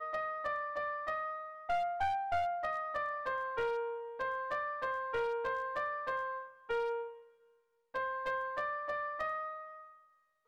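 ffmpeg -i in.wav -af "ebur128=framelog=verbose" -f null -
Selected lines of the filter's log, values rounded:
Integrated loudness:
  I:         -36.8 LUFS
  Threshold: -47.2 LUFS
Loudness range:
  LRA:         2.8 LU
  Threshold: -57.1 LUFS
  LRA low:   -38.7 LUFS
  LRA high:  -36.0 LUFS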